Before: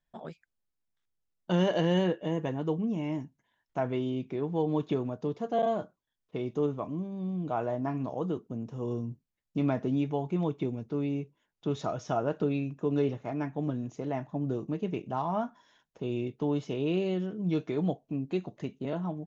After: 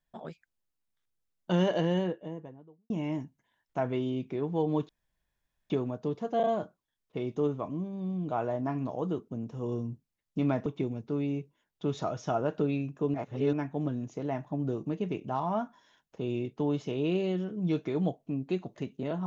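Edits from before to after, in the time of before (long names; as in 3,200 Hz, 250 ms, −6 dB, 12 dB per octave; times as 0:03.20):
0:01.51–0:02.90: fade out and dull
0:04.89: splice in room tone 0.81 s
0:09.85–0:10.48: remove
0:12.96–0:13.35: reverse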